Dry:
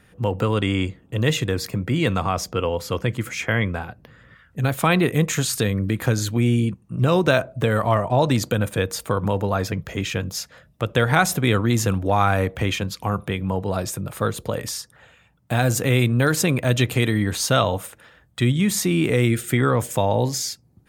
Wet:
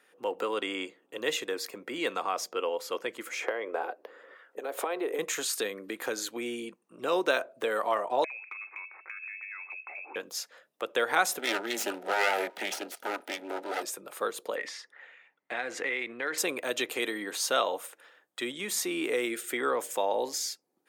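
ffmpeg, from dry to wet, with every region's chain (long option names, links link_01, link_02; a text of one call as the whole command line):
ffmpeg -i in.wav -filter_complex "[0:a]asettb=1/sr,asplit=3[link_01][link_02][link_03];[link_01]atrim=end=3.334[link_04];[link_02]atrim=start=3.33:end=5.19,asetpts=PTS-STARTPTS,afade=type=in:duration=0.004:curve=qsin,afade=type=out:start_time=1.856:duration=0.004:curve=qsin,acompressor=threshold=-26dB:ratio=12:attack=3.2:release=140:knee=1:detection=peak,highpass=340,equalizer=frequency=460:width_type=o:width=2.5:gain=14.5[link_05];[link_03]atrim=start=5.186[link_06];[link_04][link_05]acrossfade=duration=0.004:curve1=hsin:curve2=qsin[link_07];[link_07][link_06]acrossfade=duration=0.004:curve1=qsin:curve2=hsin,asettb=1/sr,asplit=3[link_08][link_09][link_10];[link_08]atrim=end=8.244[link_11];[link_09]atrim=start=8.24:end=10.16,asetpts=PTS-STARTPTS,afade=type=in:duration=0.004:curve=qsin,afade=type=out:start_time=1.916:duration=0.004:curve=qsin,lowpass=frequency=2300:width_type=q:width=0.5098,lowpass=frequency=2300:width_type=q:width=0.6013,lowpass=frequency=2300:width_type=q:width=0.9,lowpass=frequency=2300:width_type=q:width=2.563,afreqshift=-2700,highpass=frequency=320:width=0.5412,highpass=frequency=320:width=1.3066,acompressor=threshold=-31dB:ratio=12:attack=3.2:release=140:knee=1:detection=peak[link_12];[link_10]atrim=start=10.156[link_13];[link_11][link_12]acrossfade=duration=0.004:curve1=hsin:curve2=qsin[link_14];[link_14][link_13]acrossfade=duration=0.004:curve1=qsin:curve2=hsin,asettb=1/sr,asplit=3[link_15][link_16][link_17];[link_15]atrim=end=11.394[link_18];[link_16]atrim=start=11.39:end=13.83,asetpts=PTS-STARTPTS,afade=type=in:duration=0.004:curve=qsin,afade=type=out:start_time=2.436:duration=0.004:curve=qsin,aecho=1:1:1.5:0.87,atrim=end_sample=107604,aeval=exprs='abs(val(0))':channel_layout=same,asuperstop=centerf=1100:order=8:qfactor=5.8[link_19];[link_17]atrim=start=13.826[link_20];[link_18][link_19]acrossfade=duration=0.004:curve1=hsin:curve2=qsin[link_21];[link_21][link_20]acrossfade=duration=0.004:curve1=qsin:curve2=hsin,asettb=1/sr,asplit=3[link_22][link_23][link_24];[link_22]atrim=end=14.564[link_25];[link_23]atrim=start=14.56:end=16.38,asetpts=PTS-STARTPTS,afade=type=in:duration=0.004:curve=qsin,afade=type=out:start_time=1.816:duration=0.004:curve=qsin,lowpass=4200,equalizer=frequency=2000:width_type=o:width=0.43:gain=13.5,acompressor=threshold=-19dB:ratio=4:attack=3.2:release=140:knee=1:detection=peak[link_26];[link_24]atrim=start=16.376[link_27];[link_25][link_26]acrossfade=duration=0.004:curve1=hsin:curve2=qsin[link_28];[link_28][link_27]acrossfade=duration=0.004:curve1=qsin:curve2=hsin,highpass=frequency=350:width=0.5412,highpass=frequency=350:width=1.3066,bandreject=frequency=640:width=19,volume=-6.5dB" out.wav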